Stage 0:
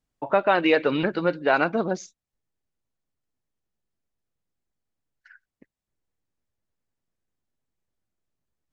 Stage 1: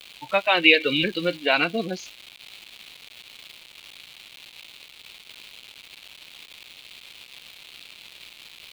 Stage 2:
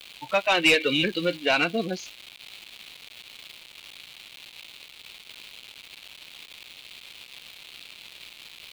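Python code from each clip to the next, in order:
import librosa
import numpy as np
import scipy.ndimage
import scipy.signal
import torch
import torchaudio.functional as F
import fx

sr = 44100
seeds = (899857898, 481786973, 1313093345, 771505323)

y1 = fx.noise_reduce_blind(x, sr, reduce_db=20)
y1 = fx.dmg_crackle(y1, sr, seeds[0], per_s=540.0, level_db=-36.0)
y1 = fx.band_shelf(y1, sr, hz=3100.0, db=14.0, octaves=1.2)
y1 = y1 * librosa.db_to_amplitude(-1.5)
y2 = 10.0 ** (-12.0 / 20.0) * np.tanh(y1 / 10.0 ** (-12.0 / 20.0))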